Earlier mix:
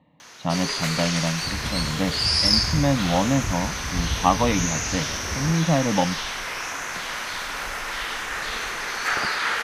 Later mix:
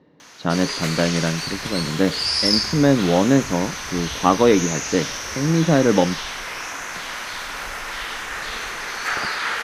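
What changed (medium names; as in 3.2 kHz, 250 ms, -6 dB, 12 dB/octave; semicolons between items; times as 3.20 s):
speech: remove static phaser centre 1.5 kHz, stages 6; second sound -11.5 dB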